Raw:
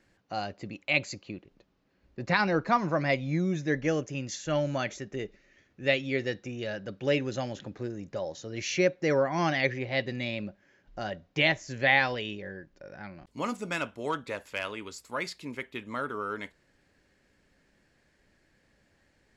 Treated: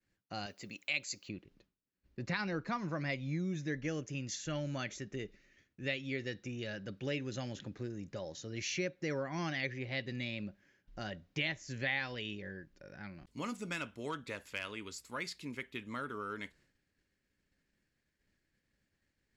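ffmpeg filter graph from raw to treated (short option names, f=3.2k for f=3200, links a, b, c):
-filter_complex "[0:a]asettb=1/sr,asplit=3[a][b][c];[a]atrim=end=0.464[d];[b]atrim=start=0.46:end=1.29,asetpts=PTS-STARTPTS,afade=t=in:d=0.004:c=qsin,afade=t=out:st=0.826:d=0.004:c=qsin,aemphasis=mode=production:type=bsi,bandreject=f=320:w=8[e];[c]atrim=start=1.286[f];[d][e]acrossfade=d=0.004:c1=hsin:c2=qsin[g];[g][f]acrossfade=d=0.004:c1=qsin:c2=hsin,agate=range=-33dB:threshold=-59dB:ratio=3:detection=peak,equalizer=f=710:t=o:w=1.6:g=-8,acompressor=threshold=-35dB:ratio=2,volume=-2dB"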